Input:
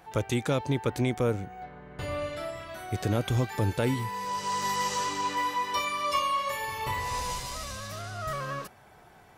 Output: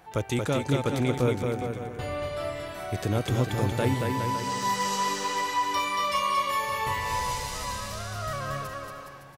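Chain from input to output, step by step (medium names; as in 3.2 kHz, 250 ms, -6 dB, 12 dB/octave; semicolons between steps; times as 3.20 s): bouncing-ball echo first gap 230 ms, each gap 0.8×, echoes 5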